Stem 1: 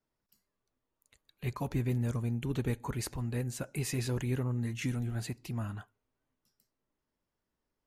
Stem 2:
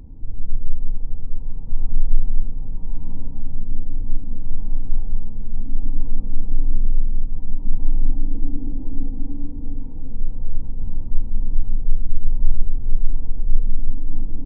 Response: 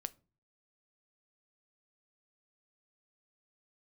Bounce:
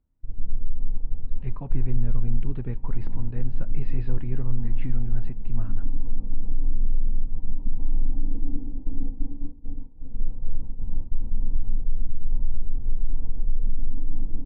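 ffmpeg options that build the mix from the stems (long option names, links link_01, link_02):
-filter_complex "[0:a]lowpass=2000,lowshelf=frequency=160:gain=10.5,volume=-5dB[link_01];[1:a]agate=range=-33dB:threshold=-13dB:ratio=3:detection=peak,alimiter=limit=-10dB:level=0:latency=1:release=81,volume=-1.5dB[link_02];[link_01][link_02]amix=inputs=2:normalize=0,lowpass=frequency=4500:width=0.5412,lowpass=frequency=4500:width=1.3066"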